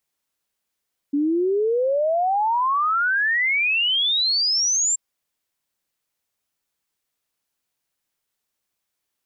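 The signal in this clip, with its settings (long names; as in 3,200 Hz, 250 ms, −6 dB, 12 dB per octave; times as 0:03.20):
exponential sine sweep 280 Hz → 7,500 Hz 3.83 s −17.5 dBFS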